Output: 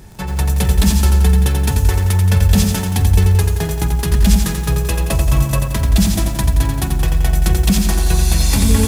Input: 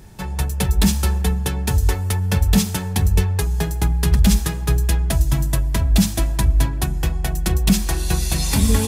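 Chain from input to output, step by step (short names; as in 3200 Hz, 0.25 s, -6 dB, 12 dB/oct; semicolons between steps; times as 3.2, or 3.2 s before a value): in parallel at -2 dB: limiter -15.5 dBFS, peak gain reduction 11 dB; 4.72–5.66 on the sum: small resonant body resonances 530/1100/2600 Hz, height 13 dB; lo-fi delay 87 ms, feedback 55%, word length 6-bit, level -5 dB; gain -1.5 dB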